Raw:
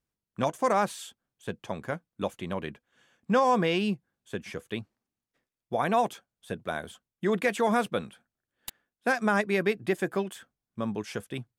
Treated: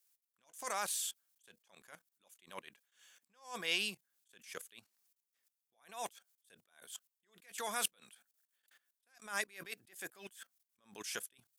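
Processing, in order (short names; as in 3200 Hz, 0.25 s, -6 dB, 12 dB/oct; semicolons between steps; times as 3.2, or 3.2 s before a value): level quantiser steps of 18 dB; differentiator; attack slew limiter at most 150 dB/s; gain +17 dB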